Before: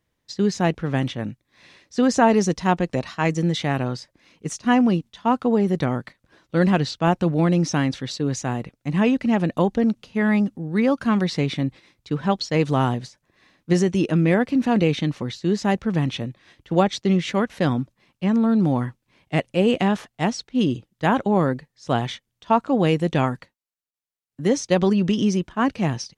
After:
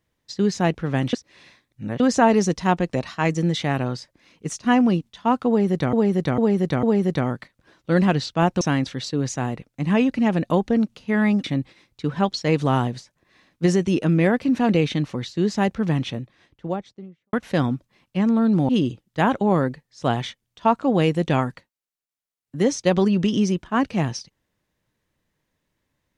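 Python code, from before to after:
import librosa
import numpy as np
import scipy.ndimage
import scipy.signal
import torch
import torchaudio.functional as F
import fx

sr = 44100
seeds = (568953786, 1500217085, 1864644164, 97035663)

y = fx.studio_fade_out(x, sr, start_s=15.96, length_s=1.44)
y = fx.edit(y, sr, fx.reverse_span(start_s=1.13, length_s=0.87),
    fx.repeat(start_s=5.48, length_s=0.45, count=4),
    fx.cut(start_s=7.26, length_s=0.42),
    fx.cut(start_s=10.51, length_s=1.0),
    fx.cut(start_s=18.76, length_s=1.78), tone=tone)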